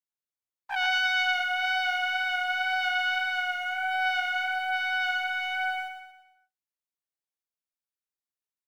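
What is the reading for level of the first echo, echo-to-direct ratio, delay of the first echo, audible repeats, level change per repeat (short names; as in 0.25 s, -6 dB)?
-7.0 dB, -6.0 dB, 0.115 s, 5, -7.0 dB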